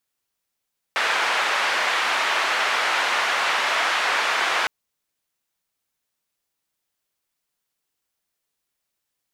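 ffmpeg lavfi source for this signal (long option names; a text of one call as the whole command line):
ffmpeg -f lavfi -i "anoisesrc=color=white:duration=3.71:sample_rate=44100:seed=1,highpass=frequency=810,lowpass=frequency=2000,volume=-5.1dB" out.wav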